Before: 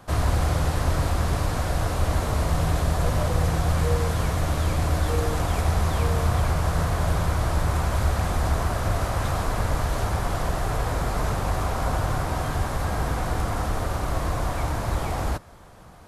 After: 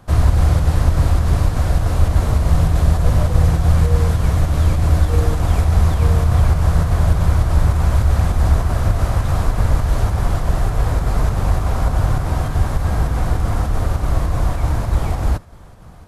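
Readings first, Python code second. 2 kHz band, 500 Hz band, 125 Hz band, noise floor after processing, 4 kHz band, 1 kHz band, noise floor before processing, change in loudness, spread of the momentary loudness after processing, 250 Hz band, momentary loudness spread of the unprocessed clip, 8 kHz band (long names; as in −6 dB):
+1.0 dB, +2.0 dB, +9.0 dB, −24 dBFS, +0.5 dB, +1.0 dB, −29 dBFS, +7.5 dB, 5 LU, +5.5 dB, 4 LU, +0.5 dB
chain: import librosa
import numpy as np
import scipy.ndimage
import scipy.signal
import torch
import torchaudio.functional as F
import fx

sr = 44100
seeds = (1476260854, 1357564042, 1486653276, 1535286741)

p1 = fx.low_shelf(x, sr, hz=200.0, db=10.0)
p2 = fx.volume_shaper(p1, sr, bpm=101, per_beat=2, depth_db=-9, release_ms=76.0, shape='slow start')
p3 = p1 + (p2 * 10.0 ** (0.5 / 20.0))
y = p3 * 10.0 ** (-5.0 / 20.0)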